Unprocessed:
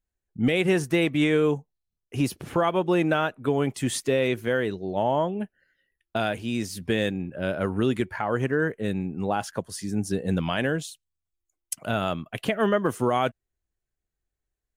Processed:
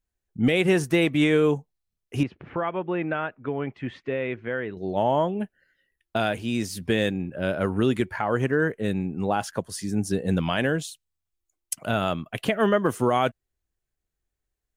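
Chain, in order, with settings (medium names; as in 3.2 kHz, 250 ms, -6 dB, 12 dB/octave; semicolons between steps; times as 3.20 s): 2.23–4.77 s: four-pole ladder low-pass 2.8 kHz, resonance 30%; trim +1.5 dB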